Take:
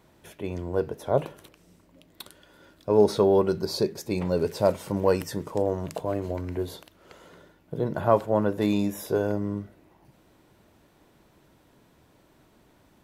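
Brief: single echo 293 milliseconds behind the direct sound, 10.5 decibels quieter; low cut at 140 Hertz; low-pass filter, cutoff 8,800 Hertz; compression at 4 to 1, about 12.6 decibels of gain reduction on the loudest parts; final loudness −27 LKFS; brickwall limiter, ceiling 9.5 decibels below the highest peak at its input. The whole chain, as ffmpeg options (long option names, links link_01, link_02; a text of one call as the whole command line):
ffmpeg -i in.wav -af "highpass=140,lowpass=8800,acompressor=threshold=-30dB:ratio=4,alimiter=level_in=1.5dB:limit=-24dB:level=0:latency=1,volume=-1.5dB,aecho=1:1:293:0.299,volume=10.5dB" out.wav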